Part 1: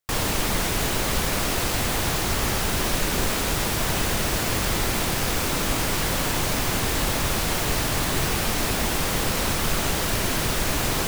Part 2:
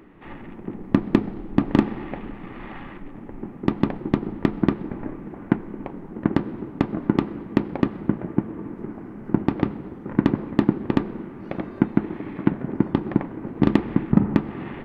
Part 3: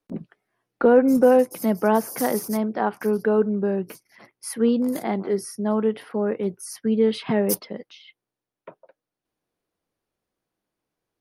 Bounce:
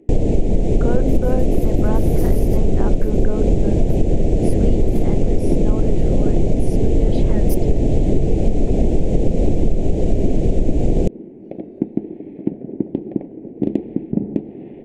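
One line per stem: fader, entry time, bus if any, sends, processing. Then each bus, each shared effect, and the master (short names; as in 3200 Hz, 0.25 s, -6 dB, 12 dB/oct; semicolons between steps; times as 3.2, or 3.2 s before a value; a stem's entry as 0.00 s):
+1.0 dB, 0.00 s, bus A, no send, Bessel low-pass 9100 Hz, order 8; tilt -4 dB/oct
-8.0 dB, 0.00 s, bus A, no send, dry
-8.5 dB, 0.00 s, no bus, no send, dry
bus A: 0.0 dB, EQ curve 100 Hz 0 dB, 440 Hz +11 dB, 710 Hz +4 dB, 1200 Hz -27 dB, 2300 Hz -5 dB, 4900 Hz -8 dB, 7200 Hz +3 dB, 13000 Hz -13 dB; compressor, threshold -10 dBFS, peak gain reduction 12 dB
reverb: off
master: dry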